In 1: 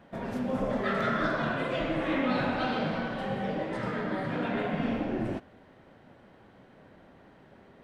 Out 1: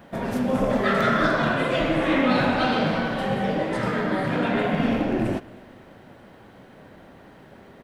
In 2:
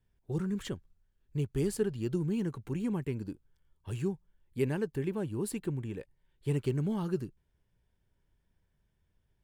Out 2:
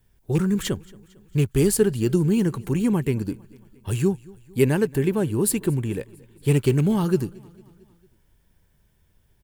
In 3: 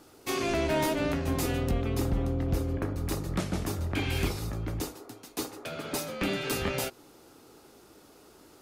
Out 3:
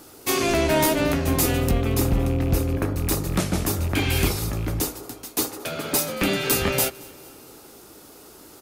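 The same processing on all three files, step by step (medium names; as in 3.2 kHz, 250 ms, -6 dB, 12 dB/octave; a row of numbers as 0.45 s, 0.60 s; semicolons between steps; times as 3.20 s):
rattle on loud lows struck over -29 dBFS, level -38 dBFS; treble shelf 8.3 kHz +11 dB; feedback delay 226 ms, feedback 55%, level -23.5 dB; normalise loudness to -23 LUFS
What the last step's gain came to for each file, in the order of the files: +7.5 dB, +11.5 dB, +7.0 dB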